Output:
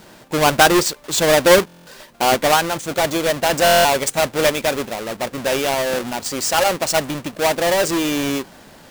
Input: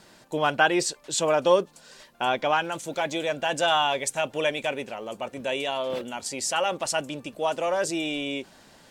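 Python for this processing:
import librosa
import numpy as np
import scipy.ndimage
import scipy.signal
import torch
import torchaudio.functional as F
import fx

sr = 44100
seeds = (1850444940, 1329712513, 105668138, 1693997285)

y = fx.halfwave_hold(x, sr)
y = fx.buffer_glitch(y, sr, at_s=(1.66, 3.64), block=1024, repeats=8)
y = y * 10.0 ** (4.5 / 20.0)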